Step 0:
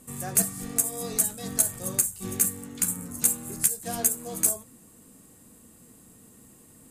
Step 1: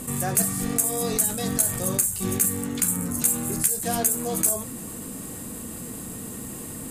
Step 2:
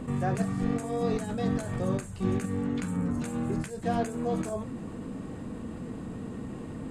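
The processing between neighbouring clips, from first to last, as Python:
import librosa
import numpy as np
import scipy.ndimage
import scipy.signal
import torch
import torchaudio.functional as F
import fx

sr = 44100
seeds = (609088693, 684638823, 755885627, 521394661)

y1 = fx.peak_eq(x, sr, hz=6100.0, db=-2.0, octaves=0.77)
y1 = fx.env_flatten(y1, sr, amount_pct=50)
y2 = fx.spacing_loss(y1, sr, db_at_10k=32)
y2 = y2 * 10.0 ** (1.0 / 20.0)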